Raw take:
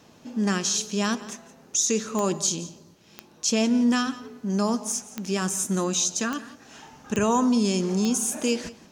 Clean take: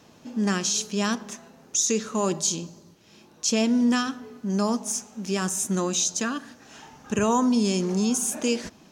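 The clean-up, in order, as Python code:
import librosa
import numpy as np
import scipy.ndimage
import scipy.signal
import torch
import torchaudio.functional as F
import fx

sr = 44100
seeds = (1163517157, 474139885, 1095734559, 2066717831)

y = fx.fix_declick_ar(x, sr, threshold=10.0)
y = fx.fix_echo_inverse(y, sr, delay_ms=172, level_db=-18.0)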